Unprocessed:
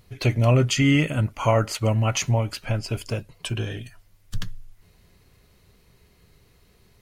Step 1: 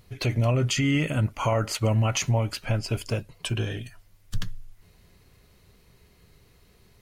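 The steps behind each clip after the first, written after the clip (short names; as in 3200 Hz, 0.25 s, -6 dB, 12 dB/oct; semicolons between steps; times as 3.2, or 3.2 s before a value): limiter -15 dBFS, peak gain reduction 6.5 dB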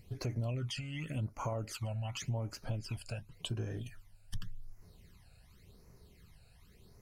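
compressor 3:1, threshold -35 dBFS, peak gain reduction 12 dB; phaser stages 12, 0.89 Hz, lowest notch 330–3400 Hz; gain -2.5 dB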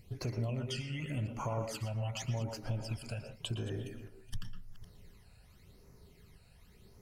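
reverse delay 0.255 s, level -13.5 dB; on a send at -5 dB: reverb RT60 0.25 s, pre-delay 0.112 s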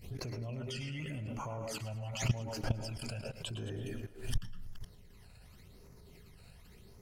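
level quantiser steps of 16 dB; thinning echo 0.106 s, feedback 56%, level -18.5 dB; backwards sustainer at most 130 dB/s; gain +8 dB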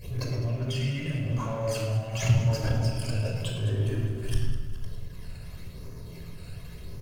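G.711 law mismatch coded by mu; feedback echo 0.204 s, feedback 55%, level -15 dB; shoebox room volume 3800 m³, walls furnished, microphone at 5.4 m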